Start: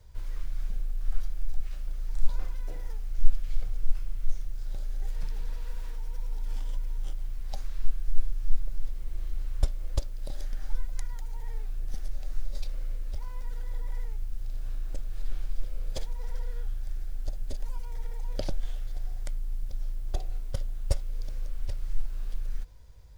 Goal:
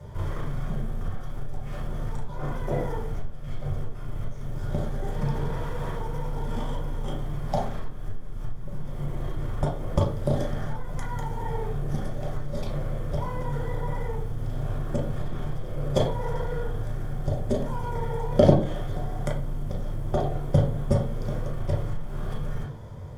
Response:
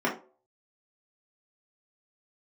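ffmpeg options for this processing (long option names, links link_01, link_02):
-filter_complex "[0:a]acompressor=threshold=-24dB:ratio=6,aeval=exprs='0.188*(cos(1*acos(clip(val(0)/0.188,-1,1)))-cos(1*PI/2))+0.0188*(cos(5*acos(clip(val(0)/0.188,-1,1)))-cos(5*PI/2))':channel_layout=same[link_01];[1:a]atrim=start_sample=2205,asetrate=26460,aresample=44100[link_02];[link_01][link_02]afir=irnorm=-1:irlink=0,volume=1dB"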